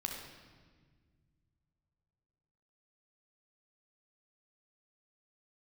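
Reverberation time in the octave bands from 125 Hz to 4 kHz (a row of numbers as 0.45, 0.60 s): 3.5, 2.6, 1.8, 1.4, 1.4, 1.3 s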